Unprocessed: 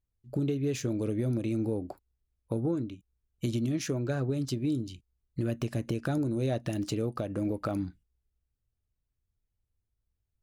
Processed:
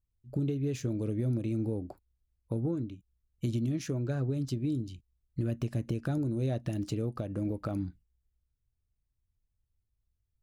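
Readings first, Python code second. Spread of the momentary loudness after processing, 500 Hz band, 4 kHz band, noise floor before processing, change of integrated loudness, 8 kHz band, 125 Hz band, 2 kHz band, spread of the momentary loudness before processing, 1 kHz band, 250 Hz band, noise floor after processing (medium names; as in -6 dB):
7 LU, -4.0 dB, -6.0 dB, -83 dBFS, -1.5 dB, -6.0 dB, +0.5 dB, -6.0 dB, 9 LU, -5.5 dB, -2.0 dB, -81 dBFS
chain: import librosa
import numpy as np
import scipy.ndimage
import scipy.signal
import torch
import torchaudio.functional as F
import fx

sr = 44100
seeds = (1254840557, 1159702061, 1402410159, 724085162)

y = fx.low_shelf(x, sr, hz=240.0, db=8.5)
y = y * 10.0 ** (-6.0 / 20.0)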